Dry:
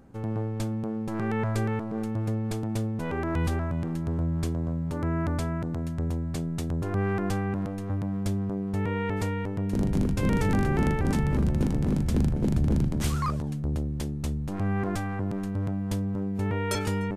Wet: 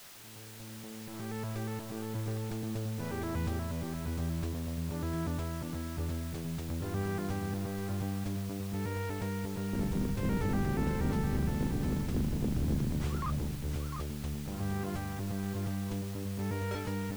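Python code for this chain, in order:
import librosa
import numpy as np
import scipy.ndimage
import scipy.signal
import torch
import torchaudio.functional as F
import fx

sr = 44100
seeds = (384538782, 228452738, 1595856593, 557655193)

p1 = fx.fade_in_head(x, sr, length_s=2.17)
p2 = fx.dmg_noise_colour(p1, sr, seeds[0], colour='blue', level_db=-38.0)
p3 = p2 + fx.echo_single(p2, sr, ms=702, db=-6.5, dry=0)
p4 = fx.slew_limit(p3, sr, full_power_hz=65.0)
y = p4 * librosa.db_to_amplitude(-7.5)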